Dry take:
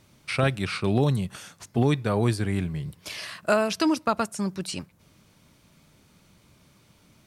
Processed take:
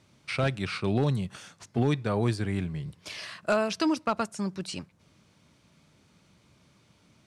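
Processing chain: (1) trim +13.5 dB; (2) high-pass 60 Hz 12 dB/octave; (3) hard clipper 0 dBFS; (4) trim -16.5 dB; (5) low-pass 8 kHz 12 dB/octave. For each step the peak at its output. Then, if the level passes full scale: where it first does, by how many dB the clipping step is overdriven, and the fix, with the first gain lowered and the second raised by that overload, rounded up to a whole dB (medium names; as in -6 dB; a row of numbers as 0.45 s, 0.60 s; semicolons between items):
+5.5 dBFS, +5.5 dBFS, 0.0 dBFS, -16.5 dBFS, -16.0 dBFS; step 1, 5.5 dB; step 1 +7.5 dB, step 4 -10.5 dB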